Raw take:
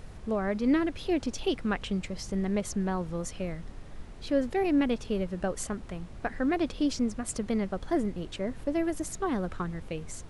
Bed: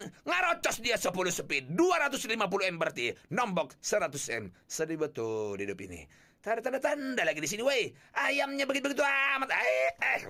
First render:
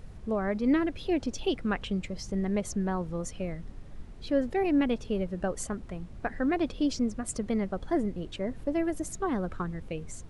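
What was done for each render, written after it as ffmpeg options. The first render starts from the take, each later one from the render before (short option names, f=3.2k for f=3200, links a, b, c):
-af "afftdn=nr=6:nf=-45"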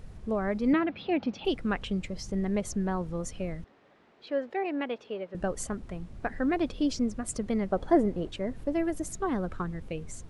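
-filter_complex "[0:a]asettb=1/sr,asplit=3[a][b][c];[a]atrim=end=0.734[d];[b]atrim=start=0.73:end=1.45,asetpts=PTS-STARTPTS,afade=t=in:d=0.004:c=qsin,afade=t=out:st=0.716:d=0.004:c=qsin,highpass=140,equalizer=f=200:t=q:w=4:g=9,equalizer=f=390:t=q:w=4:g=-3,equalizer=f=800:t=q:w=4:g=8,equalizer=f=1.3k:t=q:w=4:g=5,equalizer=f=2.4k:t=q:w=4:g=5,lowpass=f=4.1k:w=0.5412,lowpass=f=4.1k:w=1.3066[e];[c]atrim=start=1.446[f];[d][e]acrossfade=d=0.004:c1=hsin:c2=qsin[g];[g][f]acrossfade=d=0.004:c1=qsin:c2=hsin,asettb=1/sr,asplit=3[h][i][j];[h]atrim=end=3.644[k];[i]atrim=start=3.64:end=5.35,asetpts=PTS-STARTPTS,afade=t=in:d=0.004:c=qsin,afade=t=out:st=1.706:d=0.004:c=qsin,highpass=450,lowpass=3.3k[l];[j]atrim=start=5.346[m];[k][l]acrossfade=d=0.004:c1=hsin:c2=qsin[n];[n][m]acrossfade=d=0.004:c1=qsin:c2=hsin,asettb=1/sr,asplit=3[o][p][q];[o]atrim=end=7.714[r];[p]atrim=start=7.71:end=8.29,asetpts=PTS-STARTPTS,afade=t=in:d=0.004:c=qsin,afade=t=out:st=0.576:d=0.004:c=qsin,equalizer=f=590:w=0.57:g=7.5[s];[q]atrim=start=8.286[t];[r][s]acrossfade=d=0.004:c1=hsin:c2=qsin[u];[u][t]acrossfade=d=0.004:c1=qsin:c2=hsin"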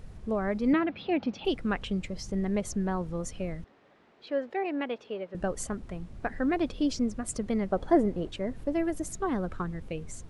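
-af anull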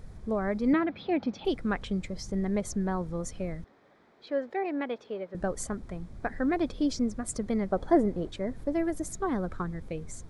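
-af "equalizer=f=2.8k:w=7.3:g=-12"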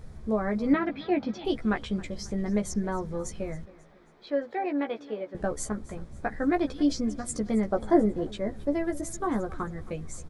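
-filter_complex "[0:a]asplit=2[a][b];[b]adelay=14,volume=-4dB[c];[a][c]amix=inputs=2:normalize=0,aecho=1:1:270|540|810:0.1|0.043|0.0185"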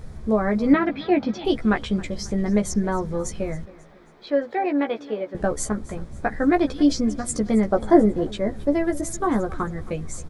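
-af "volume=6.5dB"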